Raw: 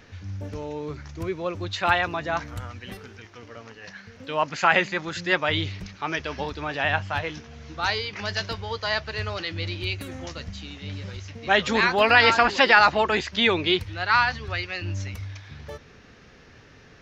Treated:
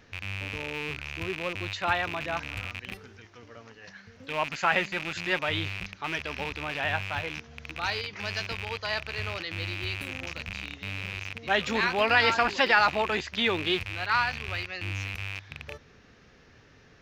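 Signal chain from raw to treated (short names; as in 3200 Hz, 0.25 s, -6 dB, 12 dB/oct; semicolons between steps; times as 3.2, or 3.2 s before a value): rattling part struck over -38 dBFS, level -17 dBFS; gain -5.5 dB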